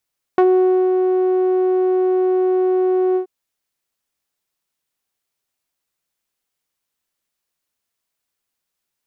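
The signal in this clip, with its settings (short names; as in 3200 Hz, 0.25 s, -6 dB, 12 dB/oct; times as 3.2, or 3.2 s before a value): synth note saw F#4 12 dB/oct, low-pass 460 Hz, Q 0.94, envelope 1.5 oct, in 0.07 s, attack 2.4 ms, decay 0.52 s, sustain -4 dB, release 0.10 s, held 2.78 s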